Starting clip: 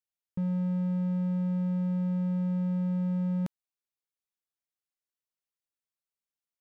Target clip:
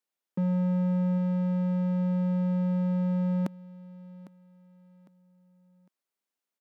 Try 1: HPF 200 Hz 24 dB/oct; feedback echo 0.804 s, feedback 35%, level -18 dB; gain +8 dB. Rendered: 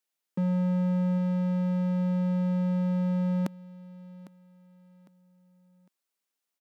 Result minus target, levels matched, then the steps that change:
4000 Hz band +4.5 dB
add after HPF: high shelf 2100 Hz -6 dB

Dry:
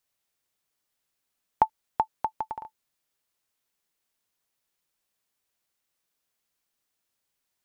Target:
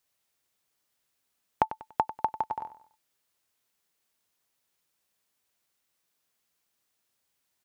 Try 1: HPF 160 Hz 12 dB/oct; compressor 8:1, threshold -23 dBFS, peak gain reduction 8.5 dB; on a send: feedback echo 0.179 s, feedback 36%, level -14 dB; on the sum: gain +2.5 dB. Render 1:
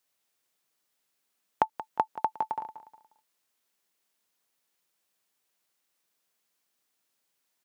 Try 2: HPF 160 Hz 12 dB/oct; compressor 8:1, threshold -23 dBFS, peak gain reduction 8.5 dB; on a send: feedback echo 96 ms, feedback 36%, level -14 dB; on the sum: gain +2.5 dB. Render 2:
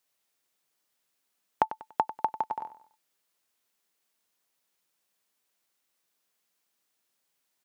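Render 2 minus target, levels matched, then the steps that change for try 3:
125 Hz band -6.0 dB
change: HPF 47 Hz 12 dB/oct

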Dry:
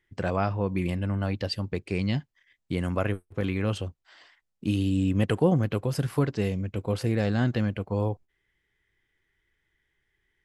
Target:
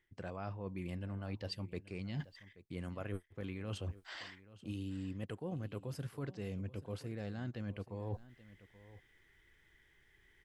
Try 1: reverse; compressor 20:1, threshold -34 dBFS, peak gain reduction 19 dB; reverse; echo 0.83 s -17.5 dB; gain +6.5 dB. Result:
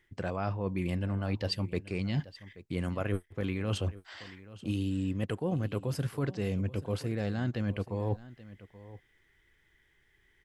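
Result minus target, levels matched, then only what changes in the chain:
compressor: peak gain reduction -10 dB
change: compressor 20:1, threshold -44.5 dBFS, peak gain reduction 29 dB

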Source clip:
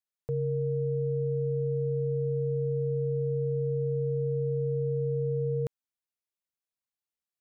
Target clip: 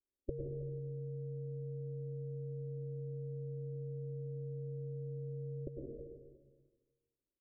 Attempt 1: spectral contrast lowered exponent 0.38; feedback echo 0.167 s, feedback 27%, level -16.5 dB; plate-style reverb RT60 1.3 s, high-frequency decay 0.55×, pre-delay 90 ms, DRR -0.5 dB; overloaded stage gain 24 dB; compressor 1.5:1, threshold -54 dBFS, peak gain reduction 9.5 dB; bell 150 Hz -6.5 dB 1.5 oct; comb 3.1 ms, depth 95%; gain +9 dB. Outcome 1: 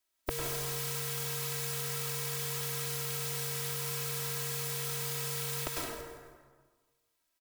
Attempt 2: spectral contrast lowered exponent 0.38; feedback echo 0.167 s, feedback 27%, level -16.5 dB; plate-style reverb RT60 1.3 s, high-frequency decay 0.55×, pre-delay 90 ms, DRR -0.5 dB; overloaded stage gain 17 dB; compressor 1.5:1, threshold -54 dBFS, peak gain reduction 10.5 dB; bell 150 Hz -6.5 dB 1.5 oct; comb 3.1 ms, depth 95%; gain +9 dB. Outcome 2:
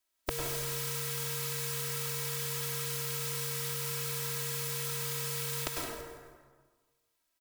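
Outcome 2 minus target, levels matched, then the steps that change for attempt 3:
500 Hz band -7.5 dB
add after compressor: rippled Chebyshev low-pass 560 Hz, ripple 3 dB

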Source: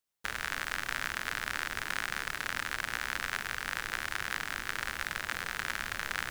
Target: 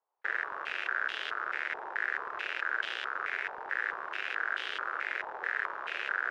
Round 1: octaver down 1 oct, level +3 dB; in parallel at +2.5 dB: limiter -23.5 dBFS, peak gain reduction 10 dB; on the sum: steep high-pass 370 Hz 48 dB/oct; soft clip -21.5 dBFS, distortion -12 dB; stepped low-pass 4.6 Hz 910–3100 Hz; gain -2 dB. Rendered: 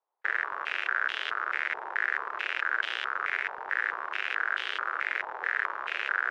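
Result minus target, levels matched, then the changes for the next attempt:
soft clip: distortion -6 dB
change: soft clip -28 dBFS, distortion -6 dB

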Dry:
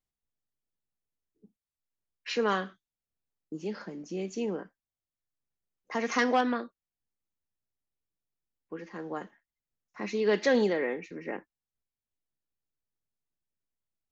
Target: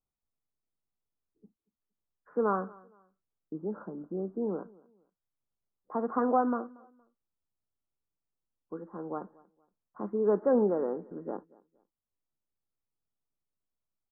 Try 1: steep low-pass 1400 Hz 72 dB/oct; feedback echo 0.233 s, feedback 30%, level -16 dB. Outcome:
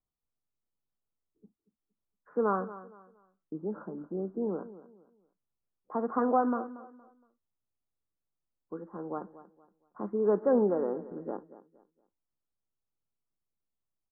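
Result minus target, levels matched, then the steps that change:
echo-to-direct +8 dB
change: feedback echo 0.233 s, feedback 30%, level -24 dB

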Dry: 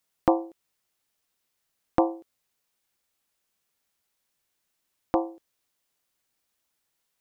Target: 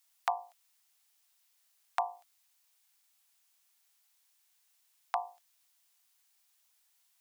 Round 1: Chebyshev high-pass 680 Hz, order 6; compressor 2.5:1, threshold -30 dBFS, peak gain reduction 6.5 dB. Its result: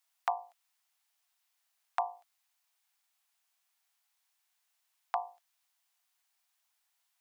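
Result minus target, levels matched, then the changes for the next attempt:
8000 Hz band -7.0 dB
add after Chebyshev high-pass: high shelf 3000 Hz +8 dB

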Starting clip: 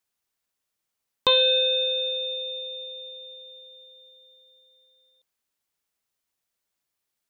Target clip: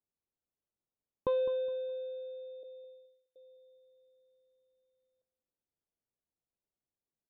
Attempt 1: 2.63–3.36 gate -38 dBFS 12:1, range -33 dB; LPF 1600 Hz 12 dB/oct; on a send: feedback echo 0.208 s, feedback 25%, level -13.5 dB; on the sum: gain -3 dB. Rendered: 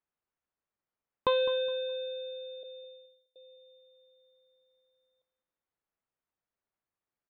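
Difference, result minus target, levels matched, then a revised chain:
2000 Hz band +12.5 dB
2.63–3.36 gate -38 dBFS 12:1, range -33 dB; LPF 550 Hz 12 dB/oct; on a send: feedback echo 0.208 s, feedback 25%, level -13.5 dB; on the sum: gain -3 dB

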